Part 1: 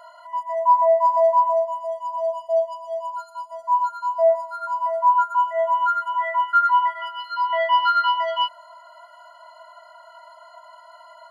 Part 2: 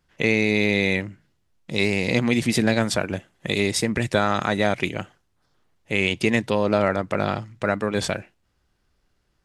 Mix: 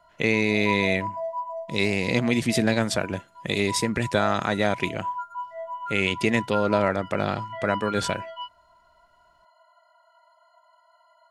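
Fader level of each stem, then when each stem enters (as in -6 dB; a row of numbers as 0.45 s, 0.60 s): -14.0 dB, -2.0 dB; 0.00 s, 0.00 s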